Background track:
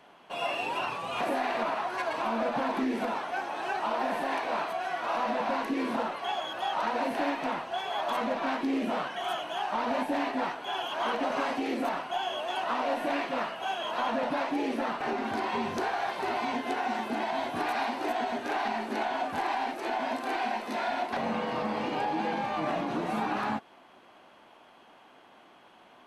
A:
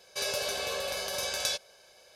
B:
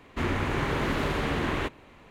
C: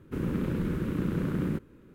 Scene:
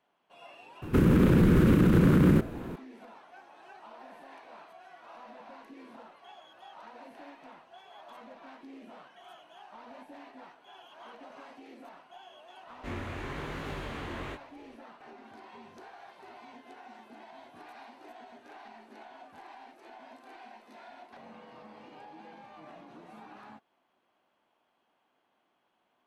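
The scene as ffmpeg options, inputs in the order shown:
-filter_complex "[0:a]volume=0.106[s0];[3:a]alimiter=level_in=23.7:limit=0.891:release=50:level=0:latency=1[s1];[2:a]flanger=delay=19.5:depth=3.9:speed=1.1[s2];[s1]atrim=end=1.94,asetpts=PTS-STARTPTS,volume=0.237,afade=t=in:d=0.004:c=hsin,afade=t=out:st=1.936:d=0.004:c=hsin,adelay=820[s3];[s2]atrim=end=2.1,asetpts=PTS-STARTPTS,volume=0.422,afade=t=in:d=0.004:c=hsin,afade=t=out:st=2.096:d=0.004:c=hsin,adelay=12670[s4];[s0][s3][s4]amix=inputs=3:normalize=0"

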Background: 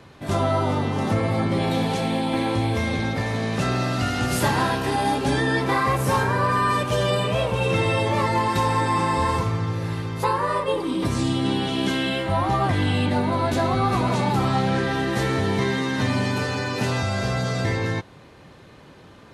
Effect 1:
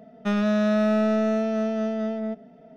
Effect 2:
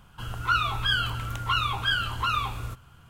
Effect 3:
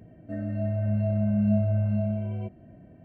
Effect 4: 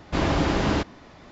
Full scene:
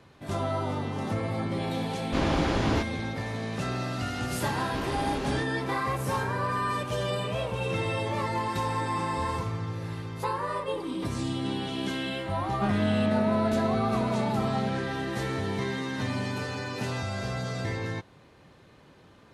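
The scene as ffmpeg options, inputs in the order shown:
-filter_complex "[4:a]asplit=2[s0][s1];[0:a]volume=0.398[s2];[s1]volume=5.62,asoftclip=hard,volume=0.178[s3];[1:a]highshelf=f=4300:g=-11.5[s4];[s0]atrim=end=1.31,asetpts=PTS-STARTPTS,volume=0.631,afade=t=in:d=0.004:c=hsin,afade=t=out:st=1.306:d=0.004:c=hsin,adelay=2000[s5];[s3]atrim=end=1.31,asetpts=PTS-STARTPTS,volume=0.282,afade=t=in:d=0.004:c=hsin,afade=t=out:st=1.306:d=0.004:c=hsin,adelay=203301S[s6];[s4]atrim=end=2.76,asetpts=PTS-STARTPTS,volume=0.562,afade=t=in:d=0.004:c=hsin,afade=t=out:st=2.756:d=0.004:c=hsin,adelay=545076S[s7];[s2][s5][s6][s7]amix=inputs=4:normalize=0"

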